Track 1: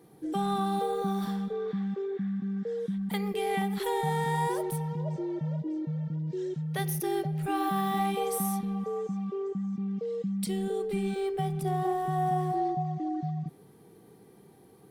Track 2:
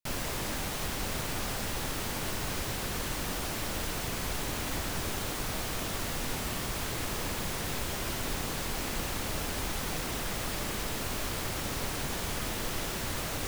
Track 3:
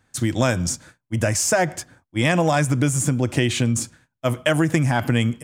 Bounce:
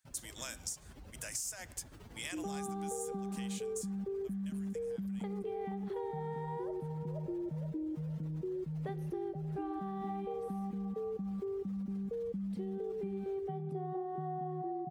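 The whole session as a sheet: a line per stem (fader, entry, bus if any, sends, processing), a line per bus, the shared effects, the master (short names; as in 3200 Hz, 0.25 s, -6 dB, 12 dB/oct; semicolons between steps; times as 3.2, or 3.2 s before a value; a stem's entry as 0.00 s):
-3.0 dB, 2.10 s, no send, AGC gain up to 7 dB; band-pass 330 Hz, Q 0.78
-13.5 dB, 0.00 s, no send, spectral contrast raised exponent 2; HPF 40 Hz 24 dB/oct; limiter -30 dBFS, peak gain reduction 6 dB
3.89 s -7 dB -> 4.19 s -18.5 dB, 0.00 s, no send, differentiator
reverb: off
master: compressor 6:1, threshold -37 dBFS, peak gain reduction 13.5 dB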